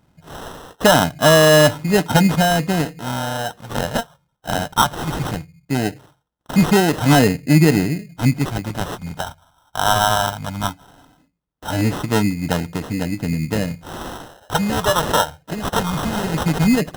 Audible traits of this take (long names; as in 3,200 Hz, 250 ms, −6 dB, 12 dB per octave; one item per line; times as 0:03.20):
phaser sweep stages 2, 0.18 Hz, lowest notch 220–3,400 Hz
aliases and images of a low sample rate 2,300 Hz, jitter 0%